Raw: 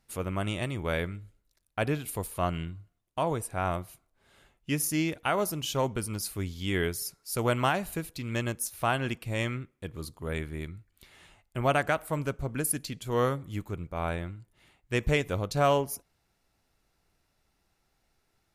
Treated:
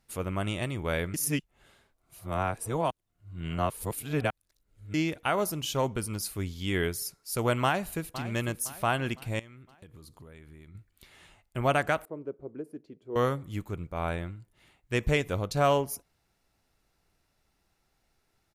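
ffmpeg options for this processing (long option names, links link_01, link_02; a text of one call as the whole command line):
ffmpeg -i in.wav -filter_complex "[0:a]asplit=2[link_01][link_02];[link_02]afade=type=in:start_time=7.63:duration=0.01,afade=type=out:start_time=8.21:duration=0.01,aecho=0:1:510|1020|1530|2040:0.211349|0.095107|0.0427982|0.0192592[link_03];[link_01][link_03]amix=inputs=2:normalize=0,asettb=1/sr,asplit=3[link_04][link_05][link_06];[link_04]atrim=end=9.394[link_07];[link_05]atrim=start=9.39:end=10.75,asetpts=PTS-STARTPTS,afade=type=in:duration=0.004:curve=qsin,afade=type=out:start_time=1.356:duration=0.004:curve=qsin,acompressor=threshold=-46dB:ratio=8:attack=3.2:release=140:knee=1:detection=peak[link_08];[link_06]atrim=start=10.746[link_09];[link_07][link_08]acrossfade=duration=0.004:curve1=hsin:curve2=qsin[link_10];[link_10][link_09]acrossfade=duration=0.004:curve1=qsin:curve2=hsin,asettb=1/sr,asplit=3[link_11][link_12][link_13];[link_11]atrim=end=12.054[link_14];[link_12]atrim=start=12.05:end=13.16,asetpts=PTS-STARTPTS,afade=type=in:duration=0.004:curve=qsin,afade=type=out:start_time=1.106:duration=0.004:curve=qsin,bandpass=frequency=380:width_type=q:width=2.9[link_15];[link_13]atrim=start=13.156[link_16];[link_14][link_15]acrossfade=duration=0.004:curve1=hsin:curve2=qsin[link_17];[link_17][link_16]acrossfade=duration=0.004:curve1=qsin:curve2=hsin,asplit=3[link_18][link_19][link_20];[link_18]atrim=end=1.142[link_21];[link_19]atrim=start=1.138:end=4.942,asetpts=PTS-STARTPTS,areverse[link_22];[link_20]atrim=start=4.938[link_23];[link_21][link_22]acrossfade=duration=0.004:curve1=hsin:curve2=hsin[link_24];[link_24][link_23]acrossfade=duration=0.004:curve1=hsin:curve2=hsin" out.wav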